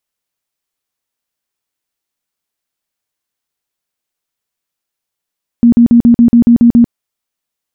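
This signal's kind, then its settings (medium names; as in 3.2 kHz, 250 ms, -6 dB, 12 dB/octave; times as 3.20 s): tone bursts 236 Hz, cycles 22, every 0.14 s, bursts 9, -2 dBFS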